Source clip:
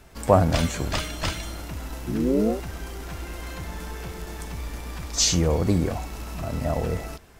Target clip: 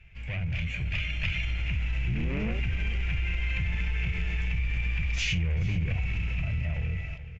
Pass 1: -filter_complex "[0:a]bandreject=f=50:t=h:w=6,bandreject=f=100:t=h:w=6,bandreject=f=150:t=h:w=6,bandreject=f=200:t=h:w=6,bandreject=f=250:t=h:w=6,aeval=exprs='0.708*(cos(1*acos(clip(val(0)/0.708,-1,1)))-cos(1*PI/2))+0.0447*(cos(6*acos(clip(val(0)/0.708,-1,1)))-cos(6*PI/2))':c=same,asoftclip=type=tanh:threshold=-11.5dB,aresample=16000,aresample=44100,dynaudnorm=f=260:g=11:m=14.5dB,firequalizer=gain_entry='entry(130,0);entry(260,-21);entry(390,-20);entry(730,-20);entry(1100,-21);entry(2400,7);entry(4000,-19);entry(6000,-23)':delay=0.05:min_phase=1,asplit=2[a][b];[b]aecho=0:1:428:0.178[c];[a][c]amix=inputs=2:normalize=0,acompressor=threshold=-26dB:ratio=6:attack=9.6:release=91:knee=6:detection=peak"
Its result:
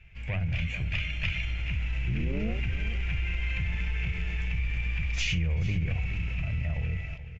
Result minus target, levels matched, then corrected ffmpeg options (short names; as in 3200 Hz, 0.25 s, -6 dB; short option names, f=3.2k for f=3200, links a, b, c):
soft clip: distortion -9 dB
-filter_complex "[0:a]bandreject=f=50:t=h:w=6,bandreject=f=100:t=h:w=6,bandreject=f=150:t=h:w=6,bandreject=f=200:t=h:w=6,bandreject=f=250:t=h:w=6,aeval=exprs='0.708*(cos(1*acos(clip(val(0)/0.708,-1,1)))-cos(1*PI/2))+0.0447*(cos(6*acos(clip(val(0)/0.708,-1,1)))-cos(6*PI/2))':c=same,asoftclip=type=tanh:threshold=-22dB,aresample=16000,aresample=44100,dynaudnorm=f=260:g=11:m=14.5dB,firequalizer=gain_entry='entry(130,0);entry(260,-21);entry(390,-20);entry(730,-20);entry(1100,-21);entry(2400,7);entry(4000,-19);entry(6000,-23)':delay=0.05:min_phase=1,asplit=2[a][b];[b]aecho=0:1:428:0.178[c];[a][c]amix=inputs=2:normalize=0,acompressor=threshold=-26dB:ratio=6:attack=9.6:release=91:knee=6:detection=peak"